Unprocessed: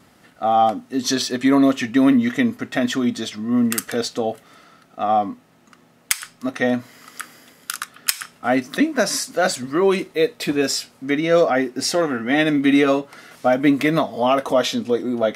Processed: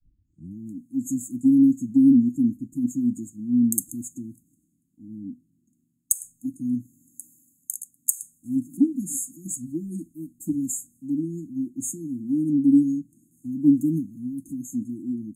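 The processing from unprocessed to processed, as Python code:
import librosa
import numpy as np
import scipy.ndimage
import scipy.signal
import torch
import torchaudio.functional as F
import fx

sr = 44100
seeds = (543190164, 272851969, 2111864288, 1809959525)

y = fx.tape_start_head(x, sr, length_s=0.58)
y = fx.brickwall_bandstop(y, sr, low_hz=340.0, high_hz=6400.0)
y = fx.band_widen(y, sr, depth_pct=40)
y = y * 10.0 ** (-3.0 / 20.0)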